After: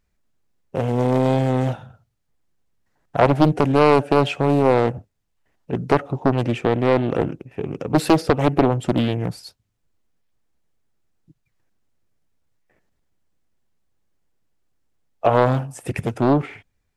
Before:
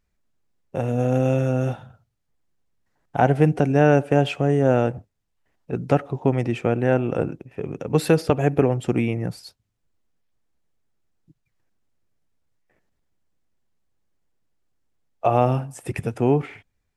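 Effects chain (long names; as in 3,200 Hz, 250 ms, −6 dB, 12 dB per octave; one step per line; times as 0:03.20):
highs frequency-modulated by the lows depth 0.86 ms
level +2.5 dB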